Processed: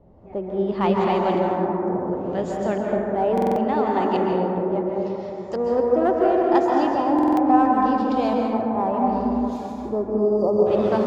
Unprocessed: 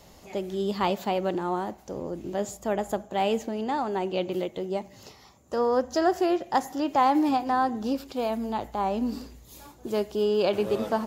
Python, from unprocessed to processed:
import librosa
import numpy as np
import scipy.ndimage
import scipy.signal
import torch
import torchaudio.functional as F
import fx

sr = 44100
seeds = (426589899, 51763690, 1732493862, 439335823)

p1 = fx.filter_lfo_lowpass(x, sr, shape='saw_up', hz=0.72, low_hz=470.0, high_hz=6500.0, q=0.77)
p2 = np.clip(10.0 ** (22.0 / 20.0) * p1, -1.0, 1.0) / 10.0 ** (22.0 / 20.0)
p3 = p1 + F.gain(torch.from_numpy(p2), -9.5).numpy()
p4 = fx.spec_erase(p3, sr, start_s=9.9, length_s=0.76, low_hz=1300.0, high_hz=4500.0)
p5 = fx.rev_plate(p4, sr, seeds[0], rt60_s=3.2, hf_ratio=0.25, predelay_ms=120, drr_db=-2.0)
y = fx.buffer_glitch(p5, sr, at_s=(3.33, 7.14), block=2048, repeats=4)